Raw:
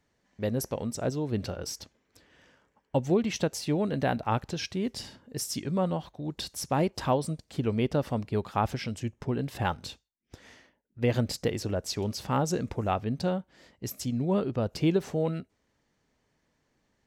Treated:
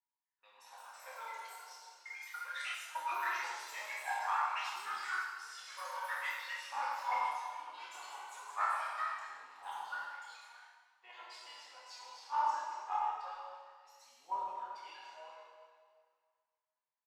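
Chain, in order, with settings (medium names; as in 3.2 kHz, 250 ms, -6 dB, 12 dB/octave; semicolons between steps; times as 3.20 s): ladder band-pass 1 kHz, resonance 80%; differentiator; phaser 0.21 Hz, delay 4.2 ms, feedback 73%; plate-style reverb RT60 2.5 s, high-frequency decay 0.95×, DRR -6.5 dB; ever faster or slower copies 371 ms, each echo +7 st, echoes 2; doubling 27 ms -5.5 dB; three bands expanded up and down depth 40%; trim +6.5 dB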